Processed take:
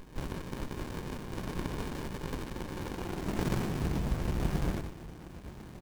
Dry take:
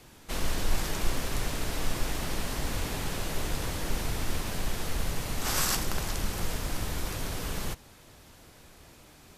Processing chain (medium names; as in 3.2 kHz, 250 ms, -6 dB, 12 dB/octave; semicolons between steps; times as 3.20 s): comb 5.6 ms, depth 88%; compression 8:1, threshold -29 dBFS, peak gain reduction 15.5 dB; high-pass sweep 1 kHz -> 60 Hz, 4.15–6.39 s; granular stretch 0.62×, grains 43 ms; word length cut 10-bit, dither none; harmony voices -4 st -16 dB, +7 st -8 dB, +12 st -6 dB; Butterworth band-stop 4 kHz, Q 3.4; delay 94 ms -7 dB; on a send at -15 dB: reverberation RT60 0.65 s, pre-delay 20 ms; on the sum: sliding maximum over 65 samples; trim +7 dB